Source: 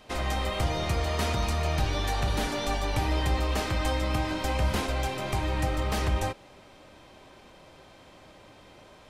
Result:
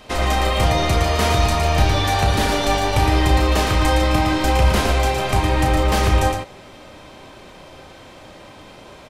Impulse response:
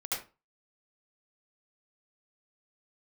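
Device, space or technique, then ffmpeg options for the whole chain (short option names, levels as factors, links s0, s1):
slapback doubling: -filter_complex "[0:a]asplit=3[s0][s1][s2];[s1]adelay=33,volume=0.447[s3];[s2]adelay=113,volume=0.531[s4];[s0][s3][s4]amix=inputs=3:normalize=0,volume=2.82"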